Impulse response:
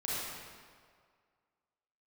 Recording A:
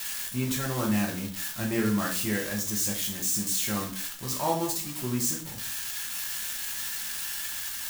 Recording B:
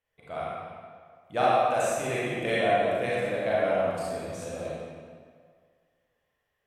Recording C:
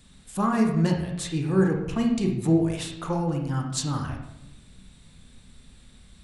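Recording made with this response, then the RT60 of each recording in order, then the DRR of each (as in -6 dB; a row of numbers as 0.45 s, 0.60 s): B; 0.50 s, 2.0 s, 0.90 s; -1.5 dB, -8.0 dB, 1.5 dB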